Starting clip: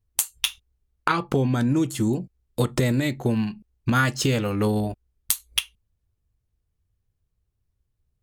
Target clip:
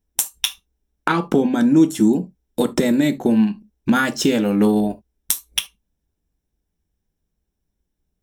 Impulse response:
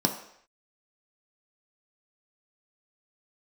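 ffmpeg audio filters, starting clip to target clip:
-filter_complex "[0:a]asplit=2[link_01][link_02];[1:a]atrim=start_sample=2205,atrim=end_sample=3528,highshelf=frequency=7900:gain=9[link_03];[link_02][link_03]afir=irnorm=-1:irlink=0,volume=-13.5dB[link_04];[link_01][link_04]amix=inputs=2:normalize=0"

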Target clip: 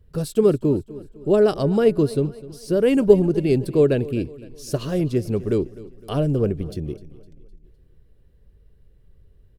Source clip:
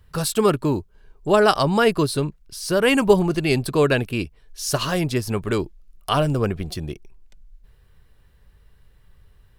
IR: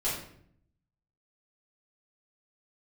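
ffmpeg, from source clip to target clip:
-filter_complex "[0:a]lowshelf=frequency=660:width_type=q:width=1.5:gain=11,asplit=2[link_01][link_02];[link_02]aecho=0:1:255|510|765|1020:0.119|0.0547|0.0251|0.0116[link_03];[link_01][link_03]amix=inputs=2:normalize=0,volume=-11dB"

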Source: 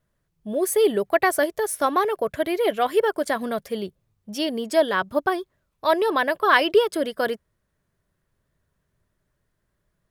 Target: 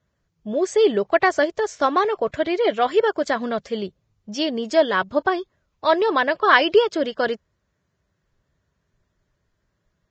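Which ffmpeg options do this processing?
ffmpeg -i in.wav -af "volume=2dB" -ar 16000 -c:a libvorbis -b:a 32k out.ogg

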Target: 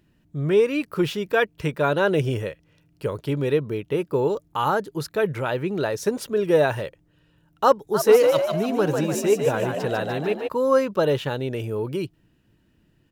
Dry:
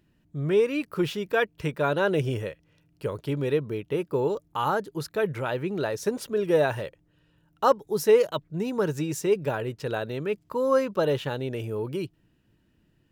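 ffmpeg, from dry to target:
ffmpeg -i in.wav -filter_complex "[0:a]asplit=3[link_01][link_02][link_03];[link_01]afade=type=out:start_time=7.93:duration=0.02[link_04];[link_02]asplit=8[link_05][link_06][link_07][link_08][link_09][link_10][link_11][link_12];[link_06]adelay=148,afreqshift=62,volume=-5dB[link_13];[link_07]adelay=296,afreqshift=124,volume=-10.7dB[link_14];[link_08]adelay=444,afreqshift=186,volume=-16.4dB[link_15];[link_09]adelay=592,afreqshift=248,volume=-22dB[link_16];[link_10]adelay=740,afreqshift=310,volume=-27.7dB[link_17];[link_11]adelay=888,afreqshift=372,volume=-33.4dB[link_18];[link_12]adelay=1036,afreqshift=434,volume=-39.1dB[link_19];[link_05][link_13][link_14][link_15][link_16][link_17][link_18][link_19]amix=inputs=8:normalize=0,afade=type=in:start_time=7.93:duration=0.02,afade=type=out:start_time=10.47:duration=0.02[link_20];[link_03]afade=type=in:start_time=10.47:duration=0.02[link_21];[link_04][link_20][link_21]amix=inputs=3:normalize=0,volume=3.5dB" out.wav

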